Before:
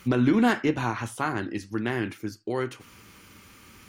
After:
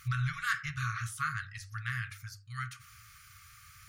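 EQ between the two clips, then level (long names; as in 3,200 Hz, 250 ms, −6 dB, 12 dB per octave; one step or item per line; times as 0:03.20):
linear-phase brick-wall band-stop 150–1,100 Hz
parametric band 2,900 Hz −7 dB 0.62 octaves
mains-hum notches 50/100 Hz
−1.5 dB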